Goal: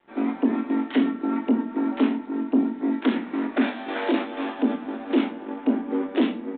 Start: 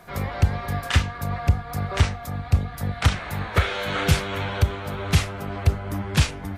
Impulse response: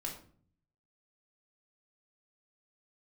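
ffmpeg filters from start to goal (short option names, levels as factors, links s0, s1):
-filter_complex "[0:a]tiltshelf=f=660:g=5,asoftclip=type=tanh:threshold=0.168,agate=range=0.398:threshold=0.0501:ratio=16:detection=peak,afreqshift=180,asettb=1/sr,asplit=3[s0][s1][s2];[s0]atrim=end=3.884[s3];[s1]atrim=start=3.88:end=4.59,asetpts=PTS-STARTPTS,afade=t=in:d=0.004:c=qsin,afade=t=out:st=0.706:d=0.004:c=qsin,highpass=280[s4];[s2]atrim=start=4.586[s5];[s3][s4]acrossfade=d=0.004:c1=hsin:c2=qsin[s6];[s6][s5]acrossfade=d=0.004:c1=qsin:c2=hsin,aeval=exprs='sgn(val(0))*max(abs(val(0))-0.00158,0)':c=same,asplit=2[s7][s8];[1:a]atrim=start_sample=2205,adelay=22[s9];[s8][s9]afir=irnorm=-1:irlink=0,volume=0.422[s10];[s7][s10]amix=inputs=2:normalize=0,aresample=8000,aresample=44100,asplit=2[s11][s12];[s12]adelay=23,volume=0.398[s13];[s11][s13]amix=inputs=2:normalize=0"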